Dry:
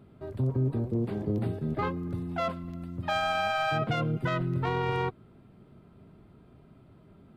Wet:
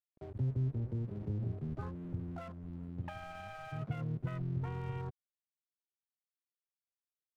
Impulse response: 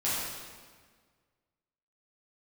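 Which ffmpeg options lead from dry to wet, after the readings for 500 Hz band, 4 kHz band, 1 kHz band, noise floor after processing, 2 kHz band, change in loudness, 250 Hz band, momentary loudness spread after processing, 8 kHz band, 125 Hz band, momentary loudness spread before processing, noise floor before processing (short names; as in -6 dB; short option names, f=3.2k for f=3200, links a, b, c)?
-16.0 dB, -22.5 dB, -18.0 dB, under -85 dBFS, -18.5 dB, -9.5 dB, -10.0 dB, 10 LU, under -15 dB, -5.5 dB, 7 LU, -56 dBFS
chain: -filter_complex "[0:a]afwtdn=0.0178,acrossover=split=140[a][b];[b]acompressor=threshold=-43dB:ratio=6[c];[a][c]amix=inputs=2:normalize=0,aeval=exprs='sgn(val(0))*max(abs(val(0))-0.00178,0)':c=same,volume=-1.5dB"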